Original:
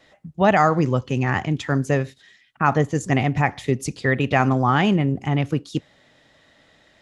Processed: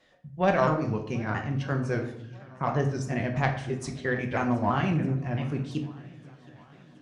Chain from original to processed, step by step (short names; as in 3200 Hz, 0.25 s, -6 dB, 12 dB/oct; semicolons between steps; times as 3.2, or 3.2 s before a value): repeated pitch sweeps -3.5 st, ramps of 0.336 s; added harmonics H 3 -16 dB, 5 -34 dB, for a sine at -3.5 dBFS; swung echo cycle 1.202 s, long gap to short 1.5:1, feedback 41%, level -22.5 dB; on a send at -4 dB: reverb RT60 0.70 s, pre-delay 5 ms; on the sum: gain -4.5 dB